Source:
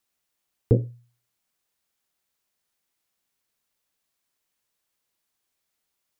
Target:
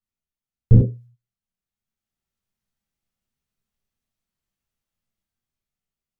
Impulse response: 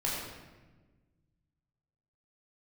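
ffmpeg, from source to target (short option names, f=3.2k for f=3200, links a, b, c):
-filter_complex "[0:a]agate=range=-12dB:threshold=-48dB:ratio=16:detection=peak,bass=f=250:g=15,treble=f=4k:g=-2,dynaudnorm=f=230:g=9:m=5dB[a];[1:a]atrim=start_sample=2205,atrim=end_sample=6615,asetrate=61740,aresample=44100[b];[a][b]afir=irnorm=-1:irlink=0,volume=-2.5dB"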